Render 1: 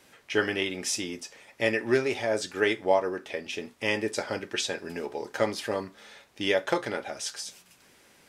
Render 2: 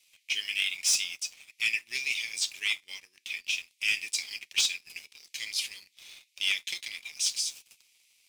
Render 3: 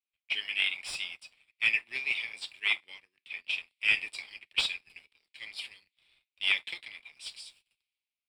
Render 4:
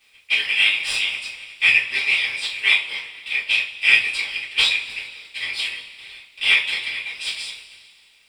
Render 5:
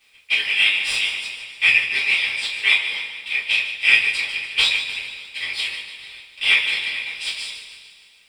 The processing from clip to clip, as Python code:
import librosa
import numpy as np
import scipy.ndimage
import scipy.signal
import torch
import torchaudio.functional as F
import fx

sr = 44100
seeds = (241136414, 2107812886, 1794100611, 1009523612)

y1 = scipy.signal.sosfilt(scipy.signal.ellip(4, 1.0, 40, 2300.0, 'highpass', fs=sr, output='sos'), x)
y1 = fx.leveller(y1, sr, passes=2)
y2 = fx.dynamic_eq(y1, sr, hz=810.0, q=0.79, threshold_db=-49.0, ratio=4.0, max_db=7)
y2 = np.convolve(y2, np.full(7, 1.0 / 7))[:len(y2)]
y2 = fx.band_widen(y2, sr, depth_pct=70)
y3 = fx.bin_compress(y2, sr, power=0.6)
y3 = fx.dereverb_blind(y3, sr, rt60_s=0.52)
y3 = fx.rev_double_slope(y3, sr, seeds[0], early_s=0.3, late_s=2.0, knee_db=-18, drr_db=-8.5)
y4 = fx.echo_feedback(y3, sr, ms=149, feedback_pct=52, wet_db=-10.5)